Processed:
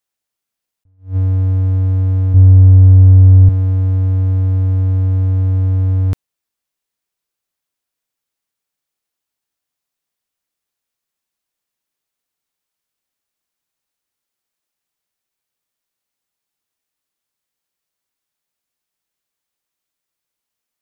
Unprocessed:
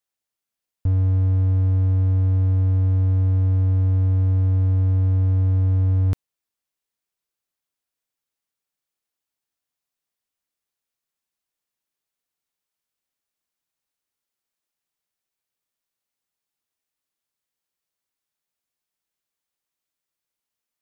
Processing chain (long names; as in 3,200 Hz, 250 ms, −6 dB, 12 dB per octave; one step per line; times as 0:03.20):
0:02.34–0:03.49: spectral tilt −2.5 dB per octave
level that may rise only so fast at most 210 dB per second
level +4.5 dB